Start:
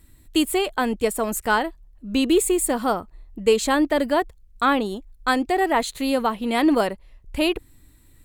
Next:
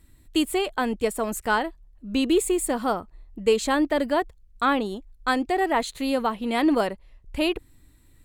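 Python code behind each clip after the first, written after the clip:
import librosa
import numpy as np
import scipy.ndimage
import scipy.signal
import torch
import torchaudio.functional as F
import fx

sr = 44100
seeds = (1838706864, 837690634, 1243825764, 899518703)

y = fx.high_shelf(x, sr, hz=10000.0, db=-6.0)
y = y * librosa.db_to_amplitude(-2.5)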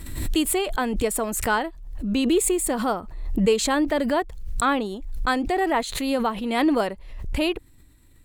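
y = fx.pre_swell(x, sr, db_per_s=50.0)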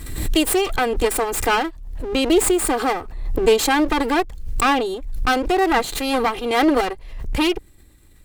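y = fx.lower_of_two(x, sr, delay_ms=2.5)
y = y * librosa.db_to_amplitude(5.0)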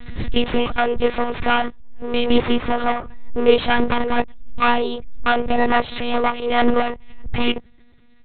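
y = fx.lpc_monotone(x, sr, seeds[0], pitch_hz=240.0, order=10)
y = y * librosa.db_to_amplitude(1.5)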